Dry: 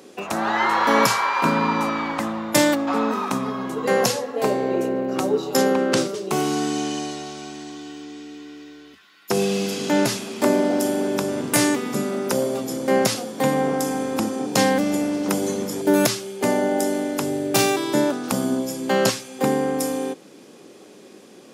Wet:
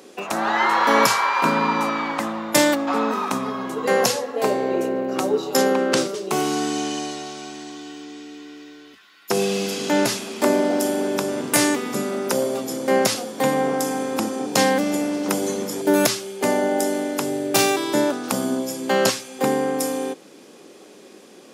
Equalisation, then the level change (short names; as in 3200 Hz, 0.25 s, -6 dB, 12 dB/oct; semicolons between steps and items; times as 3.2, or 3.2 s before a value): low shelf 150 Hz -10.5 dB; +1.5 dB